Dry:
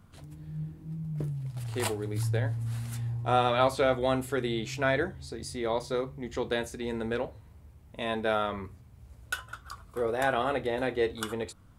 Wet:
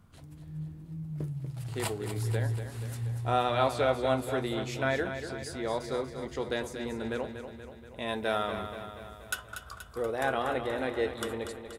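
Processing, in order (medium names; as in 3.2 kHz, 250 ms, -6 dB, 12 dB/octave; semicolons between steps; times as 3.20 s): 8.08–9.35 s: treble shelf 4.8 kHz +8.5 dB; on a send: feedback delay 239 ms, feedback 59%, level -9 dB; on the sum: trim -2.5 dB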